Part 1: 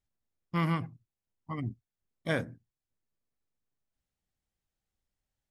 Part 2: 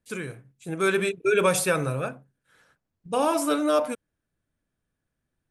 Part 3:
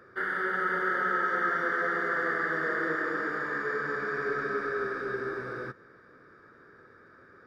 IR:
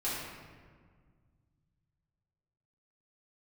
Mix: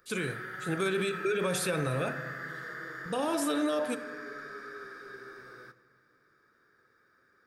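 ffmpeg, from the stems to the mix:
-filter_complex "[1:a]equalizer=f=3.7k:t=o:w=0.71:g=7,acrossover=split=470[a][b];[b]acompressor=threshold=-26dB:ratio=6[c];[a][c]amix=inputs=2:normalize=0,alimiter=limit=-17.5dB:level=0:latency=1:release=459,volume=0dB,asplit=2[d][e];[e]volume=-17.5dB[f];[2:a]crystalizer=i=6.5:c=0,volume=-17dB,asplit=2[g][h];[h]volume=-17.5dB[i];[3:a]atrim=start_sample=2205[j];[f][i]amix=inputs=2:normalize=0[k];[k][j]afir=irnorm=-1:irlink=0[l];[d][g][l]amix=inputs=3:normalize=0,alimiter=limit=-21.5dB:level=0:latency=1:release=41"

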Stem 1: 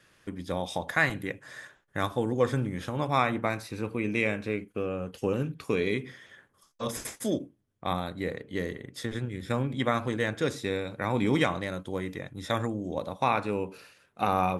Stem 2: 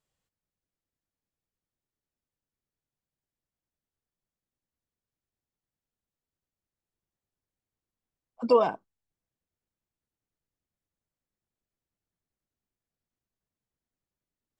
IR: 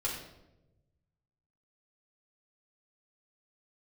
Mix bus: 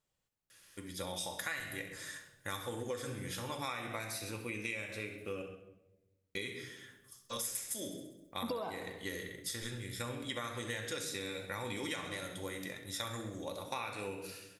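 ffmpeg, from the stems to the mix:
-filter_complex "[0:a]crystalizer=i=8:c=0,adelay=500,volume=-15dB,asplit=3[a][b][c];[a]atrim=end=5.42,asetpts=PTS-STARTPTS,afade=t=out:st=5.416:d=0.004:c=hsin[d];[b]atrim=start=5.42:end=6.35,asetpts=PTS-STARTPTS,volume=0[e];[c]atrim=start=6.35,asetpts=PTS-STARTPTS,afade=t=in:d=0.004:c=hsin[f];[d][e][f]concat=n=3:v=0:a=1,asplit=3[g][h][i];[h]volume=-4dB[j];[i]volume=-10.5dB[k];[1:a]acompressor=threshold=-22dB:ratio=6,volume=-0.5dB,asplit=2[l][m];[m]volume=-12dB[n];[2:a]atrim=start_sample=2205[o];[j][o]afir=irnorm=-1:irlink=0[p];[k][n]amix=inputs=2:normalize=0,aecho=0:1:66|132|198|264|330|396|462|528:1|0.56|0.314|0.176|0.0983|0.0551|0.0308|0.0173[q];[g][l][p][q]amix=inputs=4:normalize=0,acompressor=threshold=-36dB:ratio=6"

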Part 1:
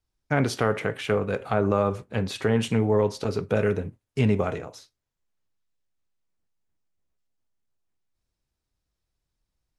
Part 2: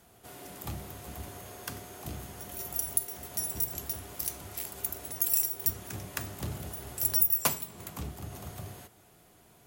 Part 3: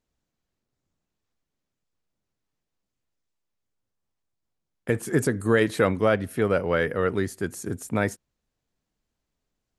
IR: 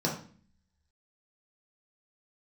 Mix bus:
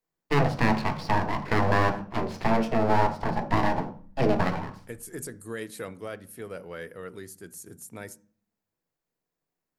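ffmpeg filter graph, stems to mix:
-filter_complex "[0:a]acrossover=split=180 2300:gain=0.141 1 0.1[a][b][c];[a][b][c]amix=inputs=3:normalize=0,aeval=exprs='abs(val(0))':c=same,volume=1dB,asplit=2[d][e];[e]volume=-11dB[f];[2:a]aemphasis=mode=production:type=75fm,volume=-17dB,asplit=2[g][h];[h]volume=-21.5dB[i];[3:a]atrim=start_sample=2205[j];[f][i]amix=inputs=2:normalize=0[k];[k][j]afir=irnorm=-1:irlink=0[l];[d][g][l]amix=inputs=3:normalize=0"

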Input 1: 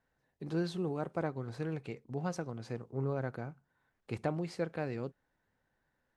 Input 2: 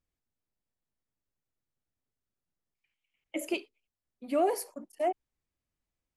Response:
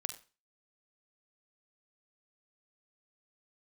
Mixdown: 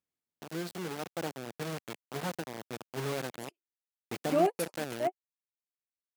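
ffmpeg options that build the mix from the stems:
-filter_complex "[0:a]acrusher=bits=5:mix=0:aa=0.000001,asoftclip=type=tanh:threshold=-20.5dB,volume=-4dB,asplit=2[a][b];[1:a]volume=-4dB[c];[b]apad=whole_len=271816[d];[c][d]sidechaingate=range=-60dB:threshold=-41dB:ratio=16:detection=peak[e];[a][e]amix=inputs=2:normalize=0,highpass=150,dynaudnorm=f=430:g=5:m=4.5dB"

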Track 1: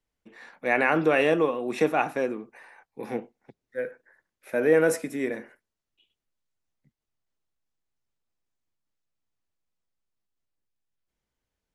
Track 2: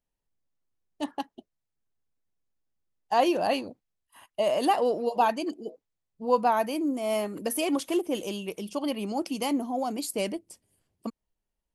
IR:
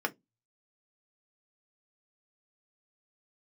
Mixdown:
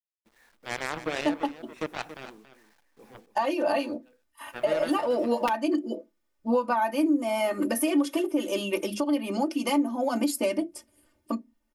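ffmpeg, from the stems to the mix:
-filter_complex "[0:a]aeval=exprs='0.376*(cos(1*acos(clip(val(0)/0.376,-1,1)))-cos(1*PI/2))+0.0841*(cos(7*acos(clip(val(0)/0.376,-1,1)))-cos(7*PI/2))':c=same,acrusher=bits=8:mix=0:aa=0.000001,volume=-9.5dB,asplit=2[a][b];[b]volume=-13dB[c];[1:a]aecho=1:1:3.3:0.97,aeval=exprs='(mod(2.99*val(0)+1,2)-1)/2.99':c=same,acompressor=threshold=-27dB:ratio=5,adelay=250,volume=1.5dB,asplit=2[d][e];[e]volume=-3dB[f];[2:a]atrim=start_sample=2205[g];[f][g]afir=irnorm=-1:irlink=0[h];[c]aecho=0:1:280:1[i];[a][d][h][i]amix=inputs=4:normalize=0,alimiter=limit=-15.5dB:level=0:latency=1:release=472"

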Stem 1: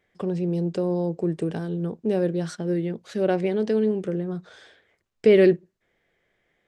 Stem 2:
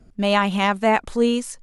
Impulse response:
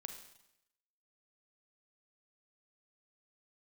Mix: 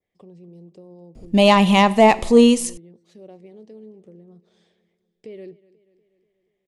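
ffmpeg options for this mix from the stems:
-filter_complex "[0:a]acompressor=threshold=-48dB:ratio=1.5,adynamicequalizer=threshold=0.001:dfrequency=3100:dqfactor=1.2:tfrequency=3100:tqfactor=1.2:attack=5:release=100:ratio=0.375:range=2.5:mode=cutabove:tftype=bell,volume=-10dB,asplit=2[a][b];[b]volume=-20dB[c];[1:a]acontrast=75,adelay=1150,volume=-1.5dB,asplit=2[d][e];[e]volume=-5dB[f];[2:a]atrim=start_sample=2205[g];[f][g]afir=irnorm=-1:irlink=0[h];[c]aecho=0:1:242|484|726|968|1210|1452|1694|1936|2178:1|0.58|0.336|0.195|0.113|0.0656|0.0381|0.0221|0.0128[i];[a][d][h][i]amix=inputs=4:normalize=0,equalizer=f=1.5k:t=o:w=0.42:g=-15"

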